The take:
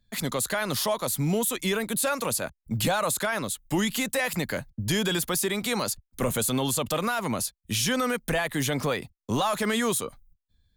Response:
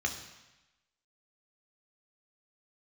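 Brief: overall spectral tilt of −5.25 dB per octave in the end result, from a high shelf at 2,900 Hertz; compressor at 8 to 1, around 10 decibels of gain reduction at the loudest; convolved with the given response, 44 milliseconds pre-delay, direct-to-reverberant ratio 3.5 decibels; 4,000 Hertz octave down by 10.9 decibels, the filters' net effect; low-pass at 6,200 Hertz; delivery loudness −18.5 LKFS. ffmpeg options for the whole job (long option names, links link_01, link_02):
-filter_complex "[0:a]lowpass=6200,highshelf=frequency=2900:gain=-8.5,equalizer=frequency=4000:width_type=o:gain=-7,acompressor=threshold=-33dB:ratio=8,asplit=2[link_01][link_02];[1:a]atrim=start_sample=2205,adelay=44[link_03];[link_02][link_03]afir=irnorm=-1:irlink=0,volume=-9dB[link_04];[link_01][link_04]amix=inputs=2:normalize=0,volume=18dB"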